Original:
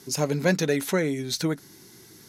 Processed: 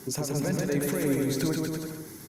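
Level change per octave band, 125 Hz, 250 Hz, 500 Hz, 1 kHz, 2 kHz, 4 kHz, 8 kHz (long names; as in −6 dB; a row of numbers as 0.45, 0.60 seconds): −1.0, −0.5, −3.5, −5.5, −7.0, −6.5, −1.5 decibels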